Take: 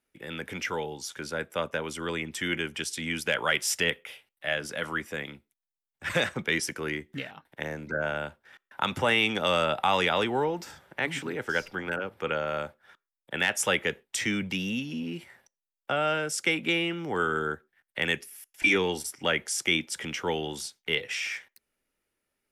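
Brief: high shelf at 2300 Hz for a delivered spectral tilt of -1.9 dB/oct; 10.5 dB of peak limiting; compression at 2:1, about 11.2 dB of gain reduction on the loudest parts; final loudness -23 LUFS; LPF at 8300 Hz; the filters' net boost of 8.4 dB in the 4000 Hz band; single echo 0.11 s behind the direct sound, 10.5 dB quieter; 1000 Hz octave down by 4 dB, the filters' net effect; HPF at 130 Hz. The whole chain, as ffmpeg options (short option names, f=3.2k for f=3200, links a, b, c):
-af "highpass=130,lowpass=8.3k,equalizer=f=1k:t=o:g=-8.5,highshelf=f=2.3k:g=9,equalizer=f=4k:t=o:g=4,acompressor=threshold=-35dB:ratio=2,alimiter=limit=-24dB:level=0:latency=1,aecho=1:1:110:0.299,volume=13dB"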